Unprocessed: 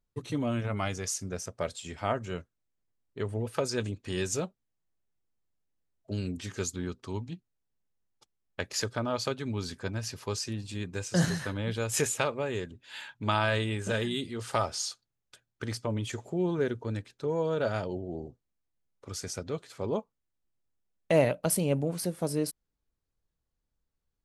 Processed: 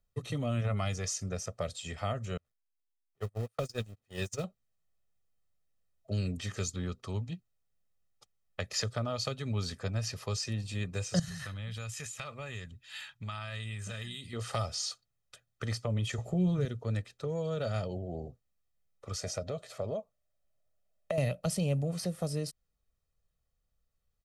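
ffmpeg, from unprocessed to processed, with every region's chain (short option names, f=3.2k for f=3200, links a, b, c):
-filter_complex "[0:a]asettb=1/sr,asplit=3[a][b][c];[a]atrim=end=2.374[d];[b]atrim=start=2.37:end=4.44,asetpts=PTS-STARTPTS,afade=t=in:d=0.004:c=qsin,afade=t=out:st=2.066:d=0.004:c=qsin,aeval=exprs='val(0)+0.5*0.0158*sgn(val(0))':c=same,agate=range=-44dB:threshold=-29dB:ratio=16:release=100:detection=peak[e];[c]atrim=start=4.436[f];[d][e]acrossfade=d=0.004:c1=hsin:c2=qsin[g];[g][f]acrossfade=d=0.004:c1=qsin:c2=hsin,asettb=1/sr,asplit=3[h][i][j];[h]atrim=end=11.194[k];[i]atrim=start=11.19:end=14.33,asetpts=PTS-STARTPTS,afade=t=in:d=0.004:c=qsin,afade=t=out:st=3.136:d=0.004:c=qsin,equalizer=f=480:w=0.65:g=-13.5,acompressor=threshold=-38dB:ratio=5:attack=3.2:release=140:knee=1:detection=peak[l];[j]atrim=start=14.326[m];[k][l]acrossfade=d=0.004:c1=hsin:c2=qsin[n];[n][m]acrossfade=d=0.004:c1=qsin:c2=hsin,asettb=1/sr,asplit=3[o][p][q];[o]atrim=end=16.184[r];[p]atrim=start=16.18:end=16.65,asetpts=PTS-STARTPTS,afade=t=in:d=0.004:c=qsin,afade=t=out:st=0.466:d=0.004:c=qsin,lowshelf=f=150:g=12,asplit=2[s][t];[t]adelay=16,volume=-8dB[u];[s][u]amix=inputs=2:normalize=0,atrim=end_sample=20727[v];[q]atrim=start=16.646[w];[r][v]acrossfade=d=0.004:c1=hsin:c2=qsin[x];[x][w]acrossfade=d=0.004:c1=qsin:c2=hsin,asettb=1/sr,asplit=3[y][z][aa];[y]atrim=end=19.184[ab];[z]atrim=start=19.18:end=21.18,asetpts=PTS-STARTPTS,afade=t=in:d=0.004:c=qsin,afade=t=out:st=1.996:d=0.004:c=qsin,equalizer=f=620:t=o:w=0.37:g=14.5,acompressor=threshold=-30dB:ratio=2.5:attack=3.2:release=140:knee=1:detection=peak[ac];[aa]atrim=start=21.176[ad];[ab][ac]acrossfade=d=0.004:c1=hsin:c2=qsin[ae];[ae][ad]acrossfade=d=0.004:c1=qsin:c2=hsin,acrossover=split=250|3000[af][ag][ah];[ag]acompressor=threshold=-36dB:ratio=6[ai];[af][ai][ah]amix=inputs=3:normalize=0,aecho=1:1:1.6:0.56,acrossover=split=7200[aj][ak];[ak]acompressor=threshold=-52dB:ratio=4:attack=1:release=60[al];[aj][al]amix=inputs=2:normalize=0"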